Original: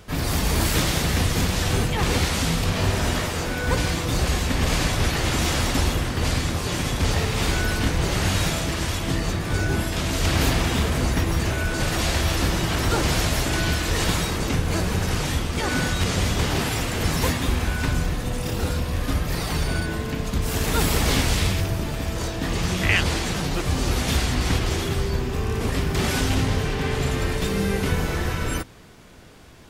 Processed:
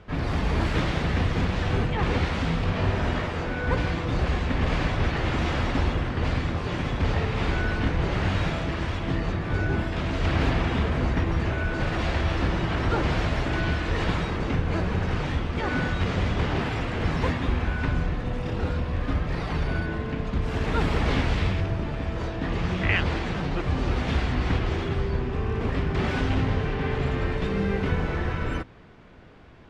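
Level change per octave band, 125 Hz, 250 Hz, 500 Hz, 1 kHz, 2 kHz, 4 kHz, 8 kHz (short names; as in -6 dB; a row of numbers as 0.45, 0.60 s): -2.0, -2.0, -2.0, -2.0, -3.5, -9.5, -21.0 dB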